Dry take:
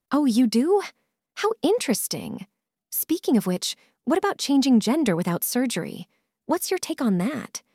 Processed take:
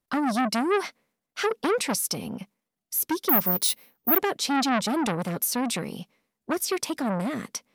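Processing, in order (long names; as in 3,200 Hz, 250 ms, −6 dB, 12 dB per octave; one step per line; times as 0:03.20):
0:03.29–0:04.18: bad sample-rate conversion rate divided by 3×, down filtered, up zero stuff
saturating transformer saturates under 3,400 Hz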